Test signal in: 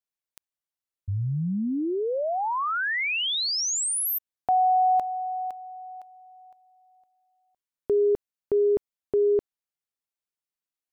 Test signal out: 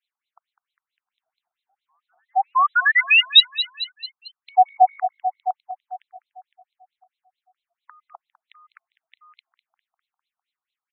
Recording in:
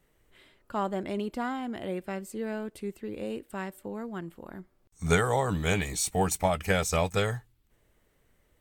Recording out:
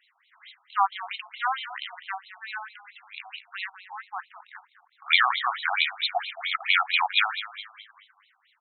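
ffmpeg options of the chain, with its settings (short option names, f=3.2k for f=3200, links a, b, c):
-filter_complex "[0:a]lowpass=f=4.5k:t=q:w=6.7,asplit=6[a][b][c][d][e][f];[b]adelay=201,afreqshift=-53,volume=-14dB[g];[c]adelay=402,afreqshift=-106,volume=-20.4dB[h];[d]adelay=603,afreqshift=-159,volume=-26.8dB[i];[e]adelay=804,afreqshift=-212,volume=-33.1dB[j];[f]adelay=1005,afreqshift=-265,volume=-39.5dB[k];[a][g][h][i][j][k]amix=inputs=6:normalize=0,asplit=2[l][m];[m]acontrast=80,volume=1.5dB[n];[l][n]amix=inputs=2:normalize=0,afftfilt=real='re*between(b*sr/1024,940*pow(3000/940,0.5+0.5*sin(2*PI*4.5*pts/sr))/1.41,940*pow(3000/940,0.5+0.5*sin(2*PI*4.5*pts/sr))*1.41)':imag='im*between(b*sr/1024,940*pow(3000/940,0.5+0.5*sin(2*PI*4.5*pts/sr))/1.41,940*pow(3000/940,0.5+0.5*sin(2*PI*4.5*pts/sr))*1.41)':win_size=1024:overlap=0.75"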